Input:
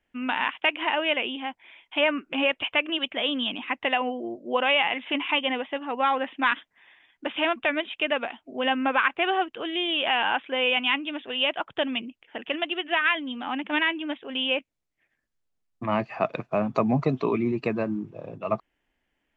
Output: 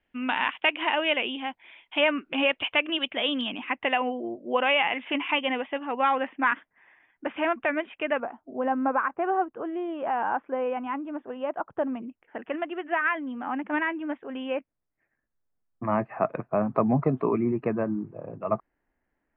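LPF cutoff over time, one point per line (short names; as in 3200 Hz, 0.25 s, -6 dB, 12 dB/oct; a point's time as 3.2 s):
LPF 24 dB/oct
4000 Hz
from 3.41 s 2900 Hz
from 6.27 s 2100 Hz
from 8.2 s 1300 Hz
from 12.02 s 1800 Hz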